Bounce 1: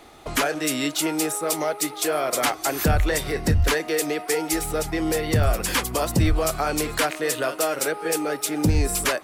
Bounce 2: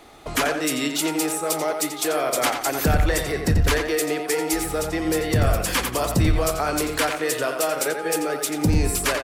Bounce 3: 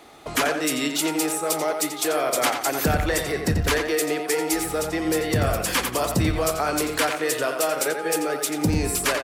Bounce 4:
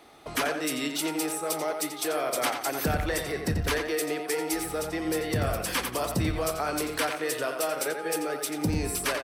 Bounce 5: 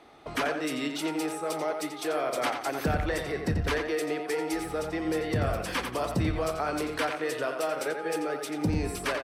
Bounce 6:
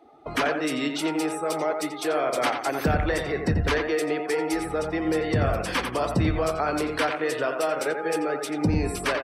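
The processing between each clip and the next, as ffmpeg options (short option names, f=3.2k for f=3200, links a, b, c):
-filter_complex "[0:a]asplit=2[a][b];[b]adelay=88,lowpass=f=4.4k:p=1,volume=-6dB,asplit=2[c][d];[d]adelay=88,lowpass=f=4.4k:p=1,volume=0.3,asplit=2[e][f];[f]adelay=88,lowpass=f=4.4k:p=1,volume=0.3,asplit=2[g][h];[h]adelay=88,lowpass=f=4.4k:p=1,volume=0.3[i];[a][c][e][g][i]amix=inputs=5:normalize=0"
-af "highpass=f=110:p=1"
-af "bandreject=f=7k:w=8.4,volume=-5.5dB"
-af "aemphasis=mode=reproduction:type=50kf"
-af "afftdn=nr=16:nf=-49,volume=4.5dB"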